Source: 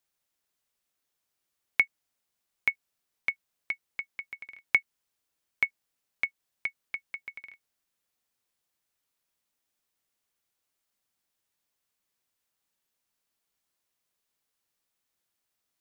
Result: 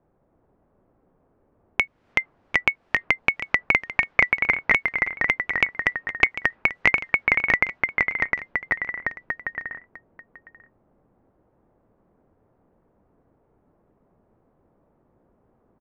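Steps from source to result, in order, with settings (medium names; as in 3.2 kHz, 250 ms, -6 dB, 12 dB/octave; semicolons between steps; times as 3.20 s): low-pass 1.6 kHz 12 dB/octave; level-controlled noise filter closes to 550 Hz, open at -42 dBFS; compression 3:1, threshold -48 dBFS, peak gain reduction 17.5 dB; delay 748 ms -18 dB; ever faster or slower copies 270 ms, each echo -1 st, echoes 3; loudness maximiser +32 dB; trim -1 dB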